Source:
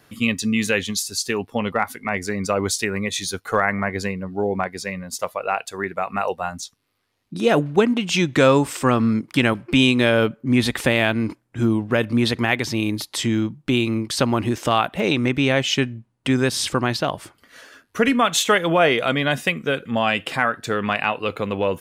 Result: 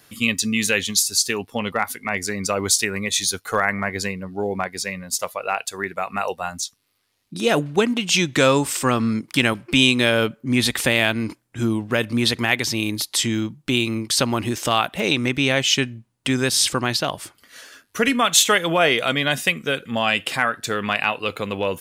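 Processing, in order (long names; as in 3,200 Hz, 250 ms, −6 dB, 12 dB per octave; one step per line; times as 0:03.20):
high-shelf EQ 2,700 Hz +10.5 dB
level −2.5 dB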